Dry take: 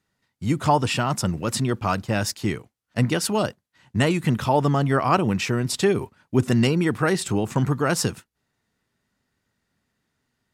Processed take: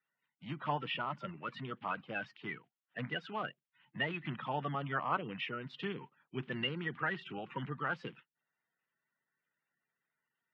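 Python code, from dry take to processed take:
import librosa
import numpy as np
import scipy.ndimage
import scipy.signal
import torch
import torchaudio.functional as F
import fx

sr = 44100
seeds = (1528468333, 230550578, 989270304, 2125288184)

y = fx.spec_quant(x, sr, step_db=30)
y = scipy.signal.sosfilt(scipy.signal.cheby1(4, 1.0, [140.0, 3100.0], 'bandpass', fs=sr, output='sos'), y)
y = fx.peak_eq(y, sr, hz=310.0, db=-14.0, octaves=2.7)
y = F.gain(torch.from_numpy(y), -7.0).numpy()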